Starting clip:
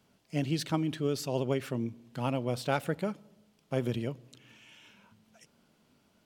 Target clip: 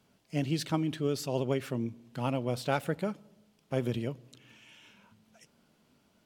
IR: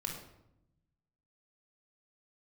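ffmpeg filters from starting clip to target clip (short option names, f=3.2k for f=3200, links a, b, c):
-ar 44100 -c:a libvorbis -b:a 96k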